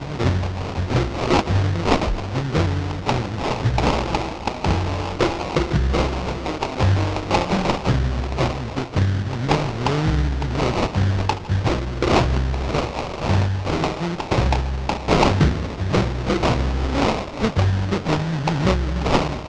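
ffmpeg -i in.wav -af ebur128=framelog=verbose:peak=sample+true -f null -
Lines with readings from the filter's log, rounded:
Integrated loudness:
  I:         -21.6 LUFS
  Threshold: -31.6 LUFS
Loudness range:
  LRA:         1.6 LU
  Threshold: -41.6 LUFS
  LRA low:   -22.3 LUFS
  LRA high:  -20.7 LUFS
Sample peak:
  Peak:       -3.4 dBFS
True peak:
  Peak:       -3.4 dBFS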